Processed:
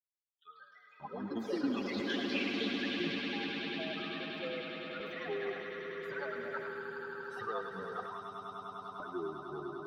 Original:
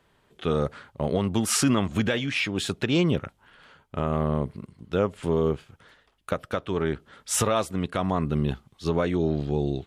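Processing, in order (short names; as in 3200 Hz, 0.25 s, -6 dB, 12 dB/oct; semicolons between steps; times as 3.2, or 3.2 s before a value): per-bin expansion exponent 3; notches 60/120/180 Hz; compressor, threshold -32 dBFS, peak gain reduction 10.5 dB; fixed phaser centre 2000 Hz, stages 6; LFO high-pass square 0.5 Hz 310–1800 Hz; swelling echo 0.1 s, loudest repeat 8, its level -9 dB; echoes that change speed 0.228 s, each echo +4 st, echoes 3; air absorption 260 m; narrowing echo 0.108 s, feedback 66%, band-pass 2600 Hz, level -5 dB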